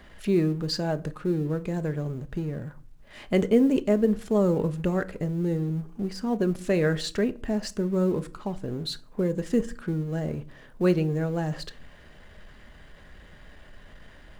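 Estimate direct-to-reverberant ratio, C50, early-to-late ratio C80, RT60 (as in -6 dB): 11.5 dB, 21.5 dB, 25.5 dB, 0.45 s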